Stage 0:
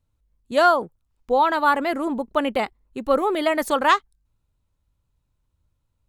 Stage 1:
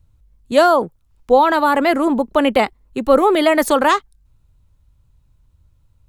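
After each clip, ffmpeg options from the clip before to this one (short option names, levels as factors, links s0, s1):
-filter_complex "[0:a]acrossover=split=150|590|6000[s0][s1][s2][s3];[s0]acompressor=mode=upward:threshold=0.00224:ratio=2.5[s4];[s2]alimiter=limit=0.133:level=0:latency=1:release=38[s5];[s4][s1][s5][s3]amix=inputs=4:normalize=0,volume=2.66"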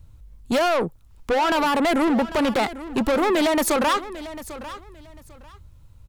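-af "acompressor=threshold=0.158:ratio=6,asoftclip=type=tanh:threshold=0.0562,aecho=1:1:797|1594:0.178|0.0391,volume=2.37"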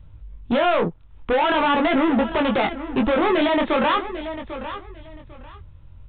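-af "flanger=delay=18.5:depth=5.9:speed=0.45,asoftclip=type=tanh:threshold=0.0891,volume=2.24" -ar 8000 -c:a adpcm_g726 -b:a 40k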